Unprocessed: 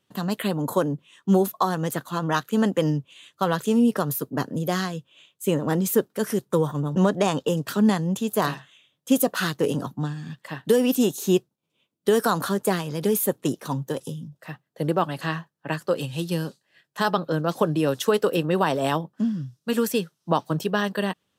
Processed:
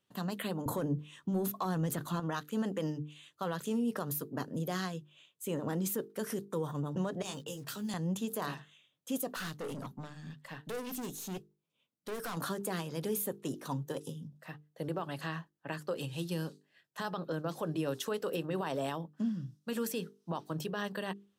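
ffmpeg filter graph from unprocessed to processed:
-filter_complex "[0:a]asettb=1/sr,asplit=3[a][b][c];[a]atrim=end=0.664[d];[b]atrim=start=0.66:end=2.2,asetpts=PTS-STARTPTS,afade=t=in:d=0.004:c=qsin,afade=t=out:st=1.536:d=0.004:c=qsin,lowshelf=f=210:g=10.5,acontrast=51[e];[c]atrim=start=2.196[f];[d][e]acrossfade=d=0.004:c1=hsin:c2=qsin[g];[g][f]acrossfade=d=0.004:c1=qsin:c2=hsin,asettb=1/sr,asplit=3[h][i][j];[h]atrim=end=7.224[k];[i]atrim=start=7.22:end=7.94,asetpts=PTS-STARTPTS,afade=t=in:d=0.004:c=qsin,afade=t=out:st=0.716:d=0.004:c=qsin,asplit=2[l][m];[m]adelay=15,volume=-5dB[n];[l][n]amix=inputs=2:normalize=0,atrim=end_sample=31752,acrossover=split=120|3000[o][p][q];[p]acompressor=threshold=-39dB:ratio=2.5:attack=3.2:release=140:knee=2.83:detection=peak[r];[o][r][q]amix=inputs=3:normalize=0,acrusher=bits=8:mix=0:aa=0.5[s];[j]atrim=start=7.936[t];[k][s]acrossfade=d=0.004:c1=hsin:c2=qsin[u];[u][t]acrossfade=d=0.004:c1=qsin:c2=hsin,asettb=1/sr,asplit=3[v][w][x];[v]atrim=end=9.364[y];[w]atrim=start=9.36:end=12.37,asetpts=PTS-STARTPTS,afade=t=in:d=0.004:c=qsin,afade=t=out:st=3.006:d=0.004:c=qsin,equalizer=f=360:t=o:w=0.21:g=-8.5,aeval=exprs='(tanh(25.1*val(0)+0.25)-tanh(0.25))/25.1':c=same[z];[x]atrim=start=12.366[aa];[y][z]acrossfade=d=0.004:c1=hsin:c2=qsin[ab];[ab][aa]acrossfade=d=0.004:c1=qsin:c2=hsin,alimiter=limit=-17.5dB:level=0:latency=1:release=55,bandreject=f=50:t=h:w=6,bandreject=f=100:t=h:w=6,bandreject=f=150:t=h:w=6,bandreject=f=200:t=h:w=6,bandreject=f=250:t=h:w=6,bandreject=f=300:t=h:w=6,bandreject=f=350:t=h:w=6,bandreject=f=400:t=h:w=6,bandreject=f=450:t=h:w=6,volume=-8dB"

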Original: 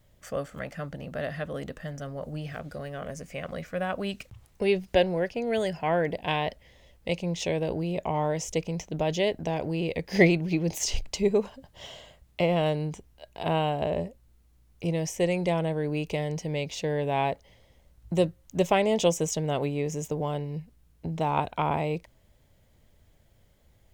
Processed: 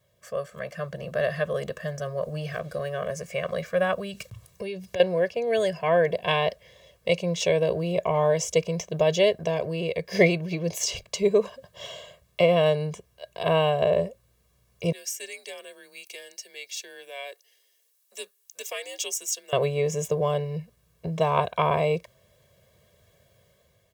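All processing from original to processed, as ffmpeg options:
-filter_complex "[0:a]asettb=1/sr,asplit=3[a][b][c];[a]atrim=end=3.934[d];[b]atrim=start=3.93:end=5,asetpts=PTS-STARTPTS,afade=t=in:d=0.004:c=qsin,afade=t=out:st=1.066:d=0.004:c=qsin,bass=f=250:g=6,treble=f=4k:g=5,acompressor=threshold=-33dB:ratio=5:attack=3.2:release=140:knee=1:detection=peak[e];[c]atrim=start=4.996[f];[d][e]acrossfade=d=0.004:c1=hsin:c2=qsin[g];[g][f]acrossfade=d=0.004:c1=qsin:c2=hsin,asettb=1/sr,asplit=3[h][i][j];[h]atrim=end=14.924[k];[i]atrim=start=14.92:end=19.53,asetpts=PTS-STARTPTS,afade=t=in:d=0.004:c=qsin,afade=t=out:st=4.606:d=0.004:c=qsin,aderivative,afreqshift=-120,highpass=f=260:w=0.5412,highpass=f=260:w=1.3066[l];[j]atrim=start=19.526[m];[k][l]acrossfade=d=0.004:c1=hsin:c2=qsin[n];[n][m]acrossfade=d=0.004:c1=qsin:c2=hsin,highpass=140,aecho=1:1:1.8:0.96,dynaudnorm=f=310:g=5:m=7.5dB,volume=-4.5dB"

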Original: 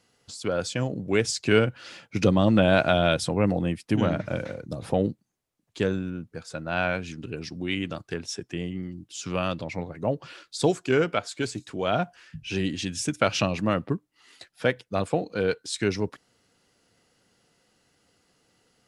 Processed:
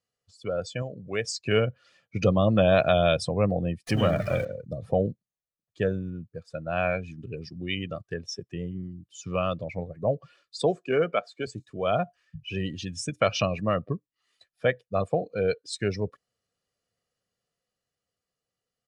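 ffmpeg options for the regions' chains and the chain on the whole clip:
-filter_complex "[0:a]asettb=1/sr,asplit=3[a][b][c];[a]atrim=end=0.824[d];[b]atrim=start=0.82:end=1.36,asetpts=PTS-STARTPTS,afade=t=in:d=0.004:c=qsin,afade=t=out:st=0.536:d=0.004:c=qsin,lowshelf=f=370:g=-6,acompressor=mode=upward:threshold=-32dB:ratio=2.5:attack=3.2:release=140:knee=2.83:detection=peak[e];[c]atrim=start=1.356[f];[d][e]acrossfade=d=0.004:c1=hsin:c2=qsin[g];[g][f]acrossfade=d=0.004:c1=qsin:c2=hsin,asettb=1/sr,asplit=3[h][i][j];[h]atrim=end=3.874[k];[i]atrim=start=3.87:end=4.45,asetpts=PTS-STARTPTS,afade=t=in:d=0.004:c=qsin,afade=t=out:st=0.576:d=0.004:c=qsin,aeval=exprs='val(0)+0.5*0.0335*sgn(val(0))':c=same,highshelf=f=2k:g=6.5[l];[j]atrim=start=4.446[m];[k][l]acrossfade=d=0.004:c1=hsin:c2=qsin[n];[n][m]acrossfade=d=0.004:c1=qsin:c2=hsin,asettb=1/sr,asplit=3[o][p][q];[o]atrim=end=10.624[r];[p]atrim=start=10.62:end=11.47,asetpts=PTS-STARTPTS,afade=t=in:d=0.004:c=qsin,afade=t=out:st=0.846:d=0.004:c=qsin,highpass=f=160:w=0.5412,highpass=f=160:w=1.3066,highshelf=f=6.5k:g=-8[s];[q]atrim=start=11.466[t];[r][s]acrossfade=d=0.004:c1=hsin:c2=qsin[u];[u][t]acrossfade=d=0.004:c1=qsin:c2=hsin,afftdn=nr=17:nf=-33,dynaudnorm=f=160:g=21:m=3.5dB,aecho=1:1:1.7:0.51,volume=-4.5dB"

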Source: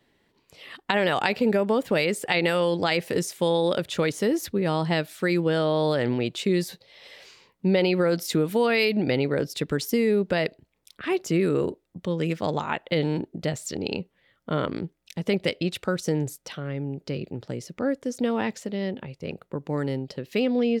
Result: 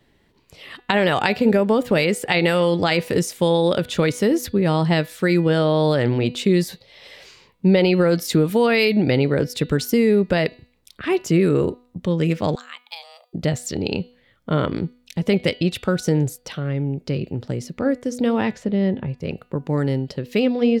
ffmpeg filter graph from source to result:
-filter_complex "[0:a]asettb=1/sr,asplit=3[a][b][c];[a]atrim=end=12.554[d];[b]atrim=start=12.55:end=13.33,asetpts=PTS-STARTPTS,afade=t=in:d=0.004:c=qsin,afade=t=out:st=0.776:d=0.004:c=qsin,aderivative,afreqshift=330[e];[c]atrim=start=13.326[f];[d][e]acrossfade=d=0.004:c1=hsin:c2=qsin[g];[g][f]acrossfade=d=0.004:c1=qsin:c2=hsin,asettb=1/sr,asplit=3[h][i][j];[h]atrim=end=18.514[k];[i]atrim=start=18.51:end=19.18,asetpts=PTS-STARTPTS,afade=t=in:d=0.004:c=qsin,afade=t=out:st=0.666:d=0.004:c=qsin,lowpass=f=2.5k:p=1,lowshelf=f=390:g=4.5,acompressor=mode=upward:threshold=-45dB:ratio=2.5:attack=3.2:release=140:knee=2.83:detection=peak[l];[j]atrim=start=19.176[m];[k][l]acrossfade=d=0.004:c1=hsin:c2=qsin[n];[n][m]acrossfade=d=0.004:c1=qsin:c2=hsin,lowshelf=f=130:g=10,bandreject=f=245.8:t=h:w=4,bandreject=f=491.6:t=h:w=4,bandreject=f=737.4:t=h:w=4,bandreject=f=983.2:t=h:w=4,bandreject=f=1.229k:t=h:w=4,bandreject=f=1.4748k:t=h:w=4,bandreject=f=1.7206k:t=h:w=4,bandreject=f=1.9664k:t=h:w=4,bandreject=f=2.2122k:t=h:w=4,bandreject=f=2.458k:t=h:w=4,bandreject=f=2.7038k:t=h:w=4,bandreject=f=2.9496k:t=h:w=4,bandreject=f=3.1954k:t=h:w=4,bandreject=f=3.4412k:t=h:w=4,bandreject=f=3.687k:t=h:w=4,bandreject=f=3.9328k:t=h:w=4,bandreject=f=4.1786k:t=h:w=4,bandreject=f=4.4244k:t=h:w=4,bandreject=f=4.6702k:t=h:w=4,volume=4dB"

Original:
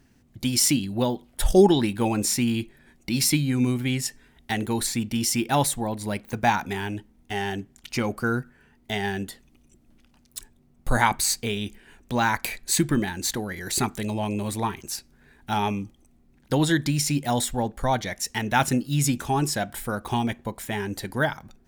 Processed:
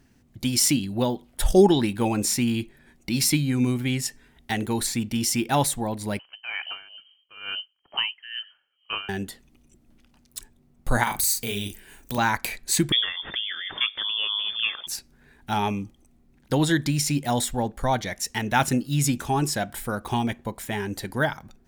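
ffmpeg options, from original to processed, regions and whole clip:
-filter_complex "[0:a]asettb=1/sr,asplit=3[a][b][c];[a]atrim=end=6.194[d];[b]atrim=start=6.19:end=9.09,asetpts=PTS-STARTPTS,afade=t=in:d=0.004:c=qsin,afade=t=out:st=2.896:d=0.004:c=qsin,lowpass=f=2.7k:t=q:w=0.5098,lowpass=f=2.7k:t=q:w=0.6013,lowpass=f=2.7k:t=q:w=0.9,lowpass=f=2.7k:t=q:w=2.563,afreqshift=-3200,aeval=exprs='val(0)*pow(10,-19*(0.5-0.5*cos(2*PI*2.2*n/s))/20)':c=same[e];[c]atrim=start=9.086[f];[d][e]acrossfade=d=0.004:c1=hsin:c2=qsin[g];[g][f]acrossfade=d=0.004:c1=qsin:c2=hsin,asettb=1/sr,asplit=3[h][i][j];[h]atrim=end=11.034[k];[i]atrim=start=11.03:end=12.18,asetpts=PTS-STARTPTS,afade=t=in:d=0.004:c=qsin,afade=t=out:st=1.146:d=0.004:c=qsin,aemphasis=mode=production:type=50fm,acompressor=threshold=-28dB:ratio=2:attack=3.2:release=140:knee=1:detection=peak,asplit=2[l][m];[m]adelay=40,volume=-4dB[n];[l][n]amix=inputs=2:normalize=0,atrim=end_sample=50715[o];[j]atrim=start=12.176[p];[k][o]acrossfade=d=0.004:c1=hsin:c2=qsin[q];[q][p]acrossfade=d=0.004:c1=qsin:c2=hsin,asettb=1/sr,asplit=3[r][s][t];[r]atrim=end=12.924[u];[s]atrim=start=12.92:end=14.87,asetpts=PTS-STARTPTS,afade=t=in:d=0.004:c=qsin,afade=t=out:st=1.946:d=0.004:c=qsin,lowpass=f=3.1k:t=q:w=0.5098,lowpass=f=3.1k:t=q:w=0.6013,lowpass=f=3.1k:t=q:w=0.9,lowpass=f=3.1k:t=q:w=2.563,afreqshift=-3600,acompressor=mode=upward:threshold=-27dB:ratio=2.5:attack=3.2:release=140:knee=2.83:detection=peak[v];[t]atrim=start=14.866[w];[u][v]acrossfade=d=0.004:c1=hsin:c2=qsin[x];[x][w]acrossfade=d=0.004:c1=qsin:c2=hsin"

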